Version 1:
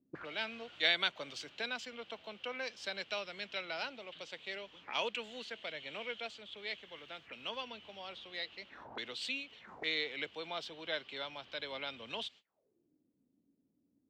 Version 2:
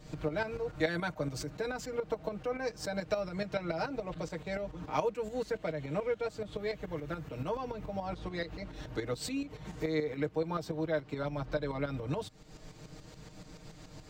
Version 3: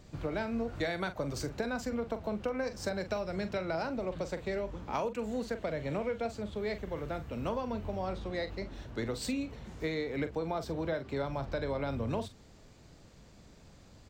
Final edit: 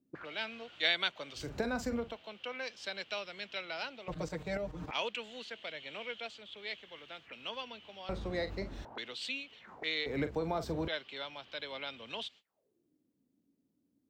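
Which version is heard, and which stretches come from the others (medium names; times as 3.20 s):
1
1.45–2.07 s: from 3, crossfade 0.24 s
4.08–4.91 s: from 2
8.09–8.85 s: from 3
10.06–10.88 s: from 3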